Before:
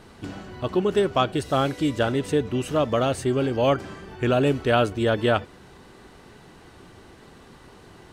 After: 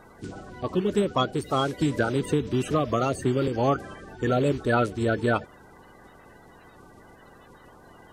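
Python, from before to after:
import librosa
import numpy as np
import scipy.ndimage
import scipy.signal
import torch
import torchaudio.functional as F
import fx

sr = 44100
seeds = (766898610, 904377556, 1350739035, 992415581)

y = fx.spec_quant(x, sr, step_db=30)
y = fx.band_squash(y, sr, depth_pct=100, at=(1.81, 3.48))
y = y * librosa.db_to_amplitude(-2.0)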